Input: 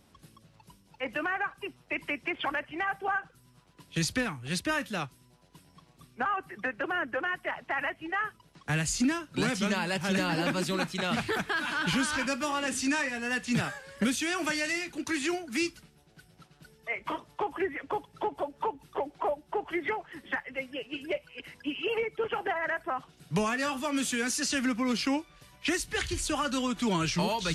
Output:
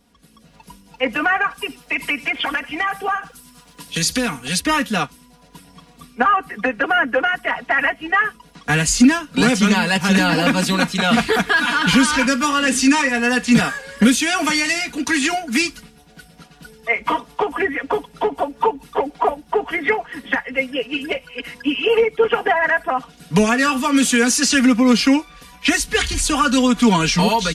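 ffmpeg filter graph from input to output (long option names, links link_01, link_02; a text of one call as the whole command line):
ffmpeg -i in.wav -filter_complex "[0:a]asettb=1/sr,asplit=3[link_01][link_02][link_03];[link_01]atrim=end=1.504[link_04];[link_02]atrim=start=1.5:end=4.61,asetpts=PTS-STARTPTS,afade=type=in:duration=0.004:curve=qsin,afade=type=out:start_time=3.106:duration=0.004:curve=qsin,highshelf=frequency=3500:gain=9.5,acompressor=threshold=-34dB:ratio=2:attack=3.2:release=140:knee=1:detection=peak,aecho=1:1:88:0.0891,atrim=end_sample=137151[link_05];[link_03]atrim=start=4.606[link_06];[link_04][link_05]acrossfade=duration=0.004:curve1=hsin:curve2=qsin[link_07];[link_07][link_06]acrossfade=duration=0.004:curve1=qsin:curve2=hsin,aecho=1:1:4.2:0.83,dynaudnorm=framelen=280:gausssize=3:maxgain=11.5dB" out.wav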